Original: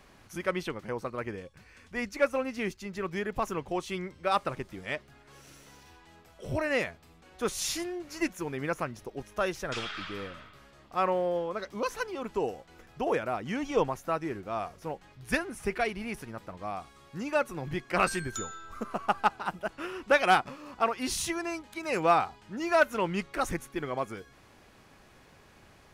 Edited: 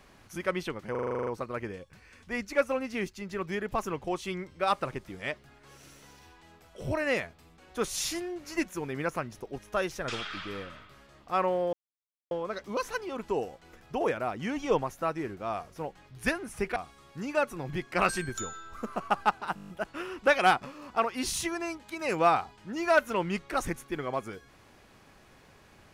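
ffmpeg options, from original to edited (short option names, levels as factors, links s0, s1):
-filter_complex "[0:a]asplit=19[s0][s1][s2][s3][s4][s5][s6][s7][s8][s9][s10][s11][s12][s13][s14][s15][s16][s17][s18];[s0]atrim=end=0.952[s19];[s1]atrim=start=0.908:end=0.952[s20];[s2]atrim=start=0.908:end=0.952[s21];[s3]atrim=start=0.908:end=0.952[s22];[s4]atrim=start=0.908:end=0.952[s23];[s5]atrim=start=0.908:end=0.952[s24];[s6]atrim=start=0.908:end=0.952[s25];[s7]atrim=start=0.908:end=0.952[s26];[s8]atrim=start=0.908:end=0.952[s27];[s9]atrim=start=0.908:end=11.37,asetpts=PTS-STARTPTS,afade=t=out:st=10.458:d=0.004:c=hsin,apad=pad_dur=0.58[s28];[s10]atrim=start=11.37:end=15.822,asetpts=PTS-STARTPTS,afade=t=in:d=0.004:c=hsin[s29];[s11]atrim=start=16.738:end=19.552[s30];[s12]atrim=start=19.528:end=19.552[s31];[s13]atrim=start=19.528:end=19.552[s32];[s14]atrim=start=19.528:end=19.552[s33];[s15]atrim=start=19.528:end=19.552[s34];[s16]atrim=start=19.528:end=19.552[s35];[s17]atrim=start=19.528:end=19.552[s36];[s18]atrim=start=19.528[s37];[s19][s20]acrossfade=d=0.004:c1=hsin:c2=hsin[s38];[s38][s21]acrossfade=d=0.004:c1=hsin:c2=hsin[s39];[s39][s22]acrossfade=d=0.004:c1=hsin:c2=hsin[s40];[s40][s23]acrossfade=d=0.004:c1=hsin:c2=hsin[s41];[s41][s24]acrossfade=d=0.004:c1=hsin:c2=hsin[s42];[s42][s25]acrossfade=d=0.004:c1=hsin:c2=hsin[s43];[s43][s26]acrossfade=d=0.004:c1=hsin:c2=hsin[s44];[s44][s27]acrossfade=d=0.004:c1=hsin:c2=hsin[s45];[s28][s29]concat=n=2:v=0:a=1[s46];[s45][s46]acrossfade=d=0.004:c1=hsin:c2=hsin[s47];[s47][s30]acrossfade=d=0.004:c1=hsin:c2=hsin[s48];[s48][s31]acrossfade=d=0.004:c1=hsin:c2=hsin[s49];[s49][s32]acrossfade=d=0.004:c1=hsin:c2=hsin[s50];[s50][s33]acrossfade=d=0.004:c1=hsin:c2=hsin[s51];[s51][s34]acrossfade=d=0.004:c1=hsin:c2=hsin[s52];[s52][s35]acrossfade=d=0.004:c1=hsin:c2=hsin[s53];[s53][s36]acrossfade=d=0.004:c1=hsin:c2=hsin[s54];[s54][s37]acrossfade=d=0.004:c1=hsin:c2=hsin"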